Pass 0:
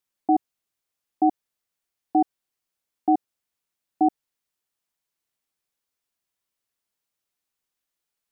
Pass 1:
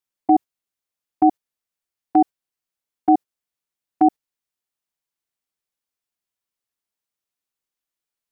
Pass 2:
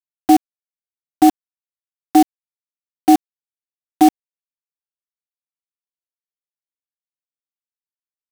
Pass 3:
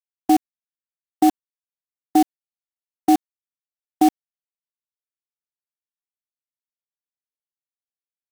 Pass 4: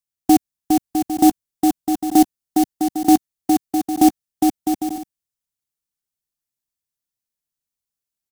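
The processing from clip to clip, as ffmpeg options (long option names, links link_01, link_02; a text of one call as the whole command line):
ffmpeg -i in.wav -af "agate=range=-9dB:threshold=-27dB:ratio=16:detection=peak,volume=5dB" out.wav
ffmpeg -i in.wav -filter_complex "[0:a]equalizer=frequency=280:width=3:gain=5.5,asplit=2[link_01][link_02];[link_02]adelay=874.6,volume=-22dB,highshelf=frequency=4000:gain=-19.7[link_03];[link_01][link_03]amix=inputs=2:normalize=0,acrusher=bits=3:mix=0:aa=0.000001,volume=1.5dB" out.wav
ffmpeg -i in.wav -af "agate=range=-33dB:threshold=-18dB:ratio=3:detection=peak,volume=-4.5dB" out.wav
ffmpeg -i in.wav -filter_complex "[0:a]bass=frequency=250:gain=11,treble=frequency=4000:gain=8,asplit=2[link_01][link_02];[link_02]aecho=0:1:410|656|803.6|892.2|945.3:0.631|0.398|0.251|0.158|0.1[link_03];[link_01][link_03]amix=inputs=2:normalize=0" out.wav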